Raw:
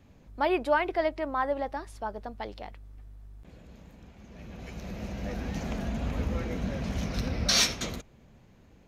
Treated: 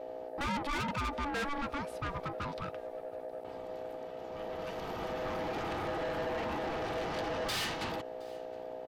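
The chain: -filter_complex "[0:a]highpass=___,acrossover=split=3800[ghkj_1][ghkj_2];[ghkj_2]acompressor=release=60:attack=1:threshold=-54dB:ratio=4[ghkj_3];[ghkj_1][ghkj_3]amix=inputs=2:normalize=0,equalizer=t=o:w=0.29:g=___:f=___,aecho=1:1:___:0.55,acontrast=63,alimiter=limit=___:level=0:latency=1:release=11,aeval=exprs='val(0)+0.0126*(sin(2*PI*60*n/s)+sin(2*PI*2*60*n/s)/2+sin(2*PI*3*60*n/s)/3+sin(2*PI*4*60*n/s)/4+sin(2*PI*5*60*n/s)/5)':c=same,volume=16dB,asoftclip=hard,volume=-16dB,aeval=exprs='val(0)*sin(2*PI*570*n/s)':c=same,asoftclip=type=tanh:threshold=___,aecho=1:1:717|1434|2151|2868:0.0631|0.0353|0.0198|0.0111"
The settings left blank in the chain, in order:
74, -11, 6500, 2.9, -11.5dB, -31.5dB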